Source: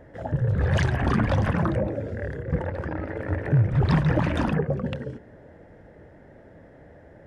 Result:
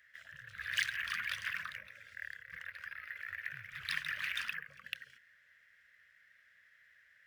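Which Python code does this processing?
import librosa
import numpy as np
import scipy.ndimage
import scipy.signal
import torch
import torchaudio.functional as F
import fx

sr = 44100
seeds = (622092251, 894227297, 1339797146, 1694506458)

y = scipy.signal.sosfilt(scipy.signal.cheby2(4, 40, 890.0, 'highpass', fs=sr, output='sos'), x)
y = np.interp(np.arange(len(y)), np.arange(len(y))[::3], y[::3])
y = F.gain(torch.from_numpy(y), 1.5).numpy()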